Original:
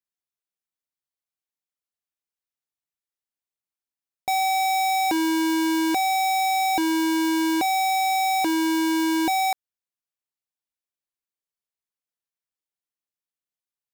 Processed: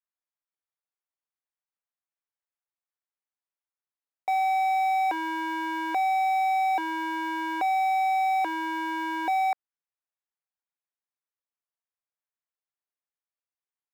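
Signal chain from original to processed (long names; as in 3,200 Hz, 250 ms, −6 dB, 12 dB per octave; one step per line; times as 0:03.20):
three-way crossover with the lows and the highs turned down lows −23 dB, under 490 Hz, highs −20 dB, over 2,300 Hz
notch filter 4,400 Hz, Q 14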